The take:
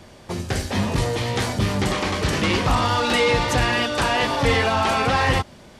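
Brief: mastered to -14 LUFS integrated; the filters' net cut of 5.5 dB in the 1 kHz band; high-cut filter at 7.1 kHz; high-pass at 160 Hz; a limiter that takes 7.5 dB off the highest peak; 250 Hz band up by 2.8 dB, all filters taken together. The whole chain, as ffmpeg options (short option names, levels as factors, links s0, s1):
-af "highpass=160,lowpass=7100,equalizer=f=250:t=o:g=5,equalizer=f=1000:t=o:g=-7.5,volume=3.55,alimiter=limit=0.596:level=0:latency=1"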